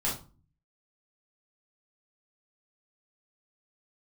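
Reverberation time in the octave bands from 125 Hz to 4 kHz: 0.80 s, 0.65 s, 0.35 s, 0.35 s, 0.25 s, 0.25 s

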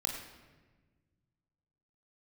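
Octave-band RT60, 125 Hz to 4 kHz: 2.6 s, 2.1 s, 1.5 s, 1.2 s, 1.2 s, 0.90 s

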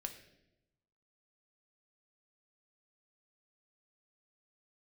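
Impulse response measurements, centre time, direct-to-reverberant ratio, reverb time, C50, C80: 14 ms, 4.5 dB, 0.90 s, 10.0 dB, 12.0 dB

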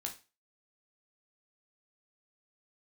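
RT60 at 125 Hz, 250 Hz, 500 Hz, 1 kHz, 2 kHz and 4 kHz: 0.30 s, 0.30 s, 0.30 s, 0.30 s, 0.30 s, 0.30 s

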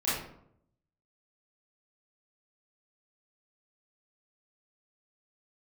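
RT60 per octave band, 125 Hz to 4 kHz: 1.0 s, 0.85 s, 0.75 s, 0.65 s, 0.50 s, 0.40 s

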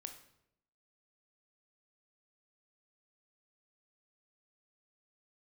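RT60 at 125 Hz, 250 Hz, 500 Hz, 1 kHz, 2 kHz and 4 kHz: 0.90 s, 0.95 s, 0.85 s, 0.70 s, 0.65 s, 0.60 s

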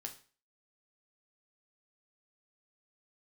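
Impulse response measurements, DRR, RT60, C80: 3.0 dB, 0.40 s, 17.5 dB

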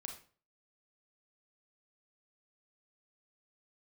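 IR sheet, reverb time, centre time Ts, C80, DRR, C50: 0.40 s, 21 ms, 12.0 dB, 2.5 dB, 7.0 dB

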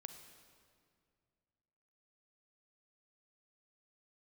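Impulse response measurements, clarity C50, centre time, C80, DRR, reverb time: 7.5 dB, 30 ms, 8.5 dB, 7.0 dB, 2.2 s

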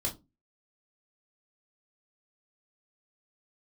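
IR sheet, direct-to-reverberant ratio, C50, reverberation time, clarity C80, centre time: -2.0 dB, 15.0 dB, 0.25 s, 23.5 dB, 15 ms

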